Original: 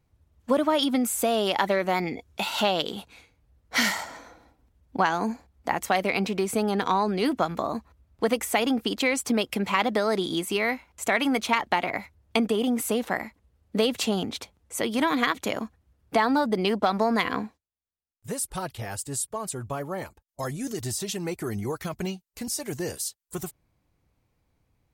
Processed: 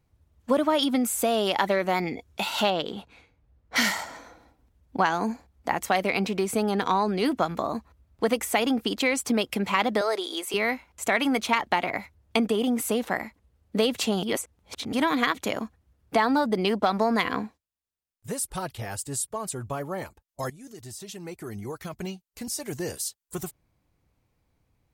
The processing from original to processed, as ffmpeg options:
-filter_complex "[0:a]asettb=1/sr,asplit=3[a][b][c];[a]atrim=end=2.704[d];[b]atrim=start=2.7:end=3.76,asetpts=PTS-STARTPTS,afade=t=in:d=0.004:c=qsin,afade=t=out:st=1.056:d=0.004:c=qsin,lowpass=f=2.4k:p=1[e];[c]atrim=start=3.756[f];[d][e]acrossfade=d=0.004:c1=hsin:c2=qsin[g];[g][f]acrossfade=d=0.004:c1=qsin:c2=hsin,asettb=1/sr,asplit=3[h][i][j];[h]atrim=end=10.014[k];[i]atrim=start=10.01:end=10.54,asetpts=PTS-STARTPTS,afade=t=in:d=0.004:c=qsin,afade=t=out:st=0.526:d=0.004:c=qsin,highpass=f=400:w=0.5412,highpass=f=400:w=1.3066[l];[j]atrim=start=10.536[m];[k][l]acrossfade=d=0.004:c1=hsin:c2=qsin[n];[n][m]acrossfade=d=0.004:c1=qsin:c2=hsin,asplit=4[o][p][q][r];[o]atrim=end=14.232[s];[p]atrim=start=14.228:end=14.932,asetpts=PTS-STARTPTS,areverse[t];[q]atrim=start=14.928:end=20.5,asetpts=PTS-STARTPTS,afade=t=out:st=5.568:d=0.004:c=hsin:silence=0.177828[u];[r]atrim=start=20.5,asetpts=PTS-STARTPTS,afade=t=in:d=2.55:silence=0.177828[v];[s][t]acrossfade=d=0.004:c1=hsin:c2=hsin[w];[u][v]concat=n=2:v=0:a=1[x];[w][x]acrossfade=d=0.004:c1=hsin:c2=hsin"

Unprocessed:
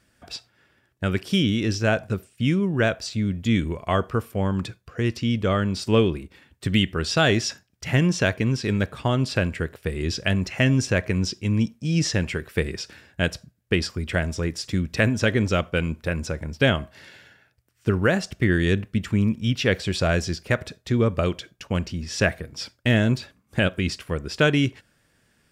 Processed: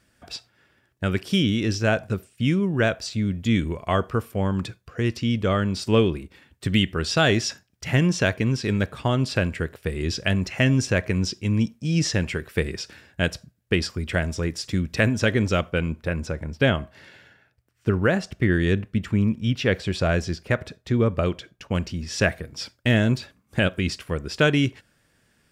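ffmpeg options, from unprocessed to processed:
-filter_complex "[0:a]asettb=1/sr,asplit=3[a][b][c];[a]atrim=end=15.724[d];[b]atrim=start=15.72:end=21.72,asetpts=PTS-STARTPTS,afade=t=in:d=0.004:c=qsin,afade=t=out:st=5.996:d=0.004:c=qsin,highshelf=f=3.6k:g=-6.5[e];[c]atrim=start=21.716[f];[d][e]acrossfade=d=0.004:c1=hsin:c2=qsin[g];[g][f]acrossfade=d=0.004:c1=qsin:c2=hsin"

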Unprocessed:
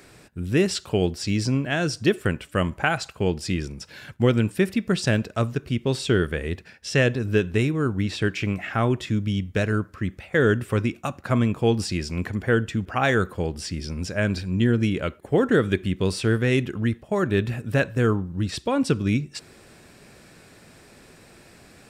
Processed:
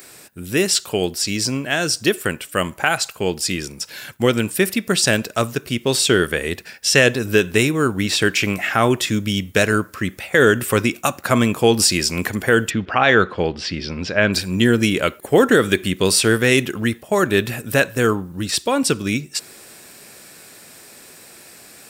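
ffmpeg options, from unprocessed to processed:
-filter_complex "[0:a]asplit=3[a][b][c];[a]afade=t=out:st=12.69:d=0.02[d];[b]lowpass=f=4.1k:w=0.5412,lowpass=f=4.1k:w=1.3066,afade=t=in:st=12.69:d=0.02,afade=t=out:st=14.32:d=0.02[e];[c]afade=t=in:st=14.32:d=0.02[f];[d][e][f]amix=inputs=3:normalize=0,aemphasis=mode=production:type=bsi,dynaudnorm=f=460:g=21:m=11.5dB,alimiter=level_in=5.5dB:limit=-1dB:release=50:level=0:latency=1,volume=-1dB"

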